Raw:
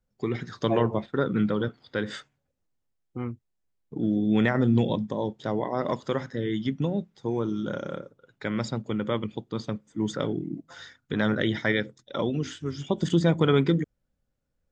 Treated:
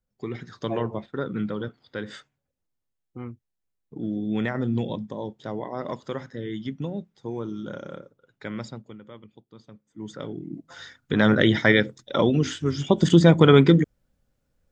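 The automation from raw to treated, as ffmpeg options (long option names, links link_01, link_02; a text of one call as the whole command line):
ffmpeg -i in.wav -af "volume=20dB,afade=type=out:start_time=8.53:duration=0.47:silence=0.223872,afade=type=in:start_time=9.7:duration=0.68:silence=0.251189,afade=type=in:start_time=10.38:duration=1:silence=0.251189" out.wav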